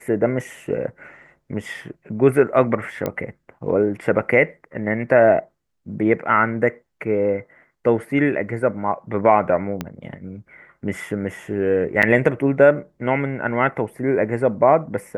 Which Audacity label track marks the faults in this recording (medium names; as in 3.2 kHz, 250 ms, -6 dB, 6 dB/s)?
3.060000	3.060000	pop -11 dBFS
9.810000	9.810000	pop -11 dBFS
12.020000	12.030000	dropout 7.7 ms